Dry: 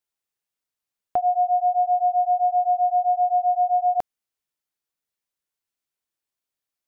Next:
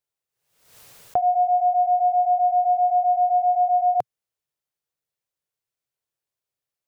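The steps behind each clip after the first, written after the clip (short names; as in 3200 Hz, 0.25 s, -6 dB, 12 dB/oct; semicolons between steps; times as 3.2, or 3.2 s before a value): graphic EQ 125/250/500 Hz +10/-5/+6 dB; backwards sustainer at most 81 dB/s; gain -2 dB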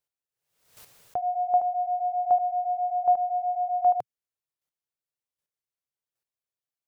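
chopper 1.3 Hz, depth 60%, duty 10%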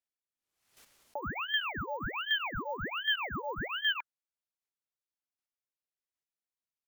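careless resampling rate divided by 2×, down none, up hold; ring modulator with a swept carrier 1300 Hz, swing 90%, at 1.3 Hz; gain -6.5 dB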